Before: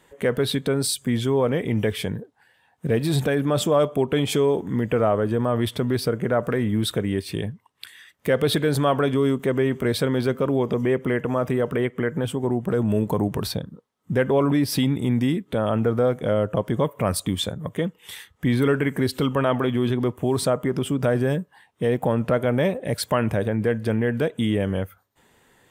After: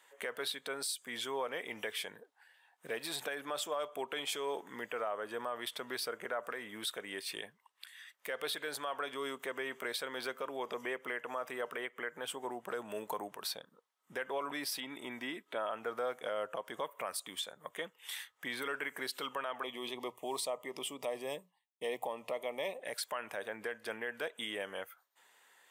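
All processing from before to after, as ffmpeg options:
-filter_complex "[0:a]asettb=1/sr,asplit=3[s0][s1][s2];[s0]atrim=end=14.804[s3];[s1]atrim=start=14.8:end=15.71,asetpts=PTS-STARTPTS,afade=t=in:d=0.004:c=qsin,afade=t=out:st=0.906:d=0.004:c=qsin,aecho=1:1:3.1:0.34,atrim=end_sample=40131,acrossover=split=3100[s4][s5];[s5]acompressor=threshold=0.00282:ratio=4:attack=1:release=60[s6];[s4][s6]amix=inputs=2:normalize=0[s7];[s2]atrim=start=15.706[s8];[s3][s7]acrossfade=d=0.004:c1=hsin:c2=qsin[s9];[s9][s8]acrossfade=d=0.004:c1=qsin:c2=hsin,asettb=1/sr,asplit=3[s10][s11][s12];[s10]atrim=end=19.634[s13];[s11]atrim=start=19.63:end=22.82,asetpts=PTS-STARTPTS,afade=t=in:d=0.004:c=qsin,afade=t=out:st=3.186:d=0.004:c=qsin,bandreject=f=60:t=h:w=6,bandreject=f=120:t=h:w=6,bandreject=f=180:t=h:w=6,agate=range=0.0224:threshold=0.0126:ratio=3:release=100:detection=peak,asuperstop=centerf=1500:order=4:qfactor=1.8[s14];[s12]atrim=start=22.816[s15];[s13][s14]acrossfade=d=0.004:c1=hsin:c2=qsin[s16];[s16][s15]acrossfade=d=0.004:c1=qsin:c2=hsin,highpass=850,alimiter=limit=0.0708:level=0:latency=1:release=252,volume=0.631"

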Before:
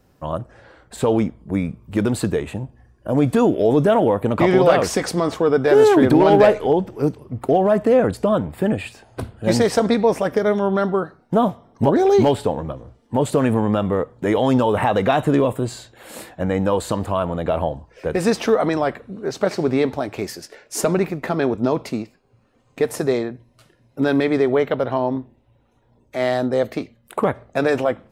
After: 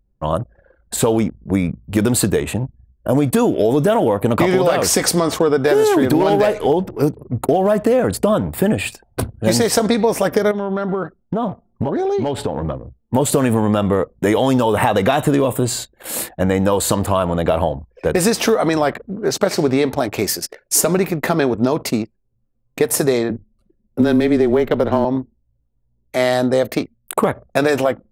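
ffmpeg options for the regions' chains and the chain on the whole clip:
-filter_complex "[0:a]asettb=1/sr,asplit=3[s0][s1][s2];[s0]atrim=end=10.514[s3];[s1]atrim=start=10.51:end=12.75,asetpts=PTS-STARTPTS,afade=t=in:d=0.004:c=qsin,afade=t=out:st=2.236:d=0.004:c=qsin,aemphasis=mode=reproduction:type=50kf,acompressor=threshold=0.0794:ratio=16:attack=3.2:release=140:knee=1:detection=peak[s4];[s2]atrim=start=12.746[s5];[s3][s4]acrossfade=d=0.004:c1=hsin:c2=qsin[s6];[s6][s5]acrossfade=d=0.004:c1=qsin:c2=hsin,asettb=1/sr,asplit=3[s7][s8][s9];[s7]atrim=end=23.294[s10];[s8]atrim=start=23.29:end=25.05,asetpts=PTS-STARTPTS,afade=t=in:d=0.004:c=qsin,afade=t=out:st=1.756:d=0.004:c=qsin,aeval=exprs='if(lt(val(0),0),0.708*val(0),val(0))':c=same,afreqshift=-20,equalizer=f=270:t=o:w=2.1:g=7[s11];[s9]atrim=start=25.046[s12];[s10][s11]acrossfade=d=0.004:c1=hsin:c2=qsin[s13];[s13][s12]acrossfade=d=0.004:c1=qsin:c2=hsin,aemphasis=mode=production:type=50kf,anlmdn=1,acompressor=threshold=0.126:ratio=6,volume=2.11"

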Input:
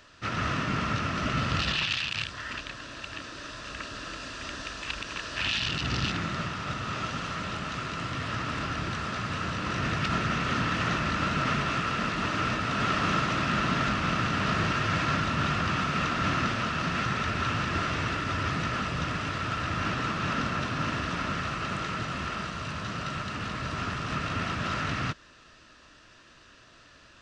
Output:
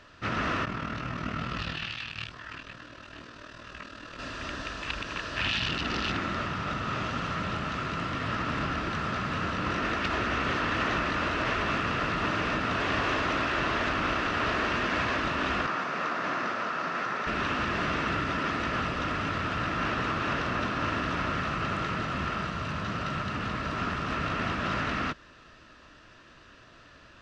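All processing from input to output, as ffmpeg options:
-filter_complex "[0:a]asettb=1/sr,asplit=3[s0][s1][s2];[s0]atrim=end=0.654[s3];[s1]atrim=start=0.65:end=4.19,asetpts=PTS-STARTPTS,afade=t=in:d=0.004:c=qsin,afade=t=out:st=3.536:d=0.004:c=qsin,highpass=48,tremolo=f=39:d=0.919,flanger=delay=16.5:depth=2.6:speed=2.3[s4];[s2]atrim=start=4.186[s5];[s3][s4]acrossfade=d=0.004:c1=hsin:c2=qsin[s6];[s6][s5]acrossfade=d=0.004:c1=qsin:c2=hsin,asettb=1/sr,asplit=3[s7][s8][s9];[s7]atrim=end=15.664[s10];[s8]atrim=start=15.66:end=17.27,asetpts=PTS-STARTPTS,afade=t=in:d=0.004:c=qsin,afade=t=out:st=1.606:d=0.004:c=qsin,highpass=420,lowpass=6800,equalizer=f=3100:w=1.2:g=-7[s11];[s9]atrim=start=17.266[s12];[s10][s11]acrossfade=d=0.004:c1=hsin:c2=qsin[s13];[s13][s12]acrossfade=d=0.004:c1=qsin:c2=hsin,lowpass=f=2600:p=1,afftfilt=real='re*lt(hypot(re,im),0.178)':imag='im*lt(hypot(re,im),0.178)':win_size=1024:overlap=0.75,volume=1.41"

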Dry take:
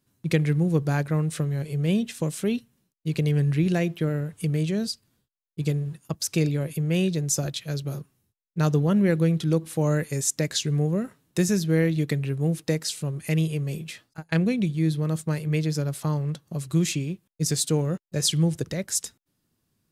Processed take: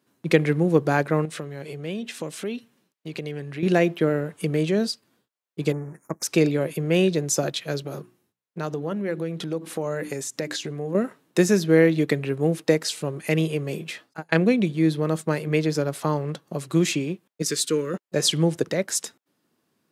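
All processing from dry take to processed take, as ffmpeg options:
-filter_complex "[0:a]asettb=1/sr,asplit=3[s0][s1][s2];[s0]atrim=end=1.254[s3];[s1]atrim=start=1.25:end=3.63,asetpts=PTS-STARTPTS,afade=t=in:d=0.004:c=qsin,afade=t=out:st=2.376:d=0.004:c=qsin,equalizer=f=3300:t=o:w=2.4:g=3.5,acompressor=threshold=0.0158:ratio=2.5:attack=3.2:release=140:knee=1:detection=peak[s4];[s2]atrim=start=3.626[s5];[s3][s4]acrossfade=d=0.004:c1=hsin:c2=qsin[s6];[s6][s5]acrossfade=d=0.004:c1=qsin:c2=hsin,asettb=1/sr,asplit=3[s7][s8][s9];[s7]atrim=end=5.724[s10];[s8]atrim=start=5.72:end=6.23,asetpts=PTS-STARTPTS,afade=t=in:d=0.004:c=qsin,afade=t=out:st=0.506:d=0.004:c=qsin,aeval=exprs='if(lt(val(0),0),0.447*val(0),val(0))':c=same,asuperstop=centerf=3600:order=12:qfactor=1.1[s11];[s9]atrim=start=6.226[s12];[s10][s11]acrossfade=d=0.004:c1=hsin:c2=qsin[s13];[s13][s12]acrossfade=d=0.004:c1=qsin:c2=hsin,asettb=1/sr,asplit=3[s14][s15][s16];[s14]atrim=end=7.834[s17];[s15]atrim=start=7.83:end=10.95,asetpts=PTS-STARTPTS,afade=t=in:d=0.004:c=qsin,afade=t=out:st=3.116:d=0.004:c=qsin,bandreject=f=60:t=h:w=6,bandreject=f=120:t=h:w=6,bandreject=f=180:t=h:w=6,bandreject=f=240:t=h:w=6,bandreject=f=300:t=h:w=6,bandreject=f=360:t=h:w=6,acompressor=threshold=0.0355:ratio=6:attack=3.2:release=140:knee=1:detection=peak[s18];[s16]atrim=start=10.946[s19];[s17][s18]acrossfade=d=0.004:c1=hsin:c2=qsin[s20];[s20][s19]acrossfade=d=0.004:c1=qsin:c2=hsin,asettb=1/sr,asplit=3[s21][s22][s23];[s21]atrim=end=17.424[s24];[s22]atrim=start=17.42:end=17.94,asetpts=PTS-STARTPTS,afade=t=in:d=0.004:c=qsin,afade=t=out:st=0.516:d=0.004:c=qsin,asuperstop=centerf=740:order=4:qfactor=1.2,lowshelf=f=250:g=-11.5[s25];[s23]atrim=start=17.936[s26];[s24][s25]acrossfade=d=0.004:c1=hsin:c2=qsin[s27];[s27][s26]acrossfade=d=0.004:c1=qsin:c2=hsin,highpass=290,highshelf=f=3400:g=-10.5,volume=2.82"

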